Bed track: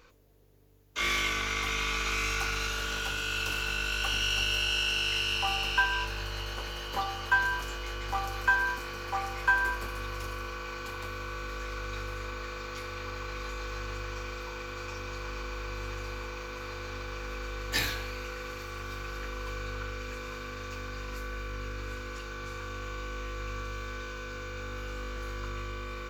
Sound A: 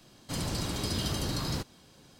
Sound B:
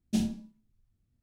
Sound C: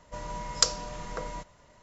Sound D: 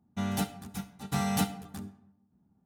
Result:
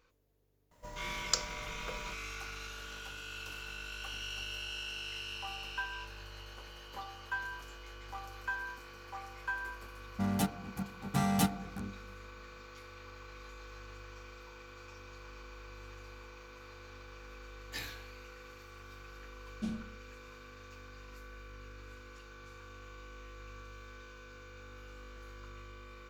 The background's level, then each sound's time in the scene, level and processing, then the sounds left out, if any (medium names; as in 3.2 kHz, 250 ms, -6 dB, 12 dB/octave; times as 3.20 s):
bed track -12.5 dB
0.71 s: add C -8 dB + companded quantiser 6-bit
10.02 s: add D -0.5 dB + local Wiener filter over 15 samples
19.49 s: add B -9.5 dB + low-pass 3.1 kHz 6 dB/octave
not used: A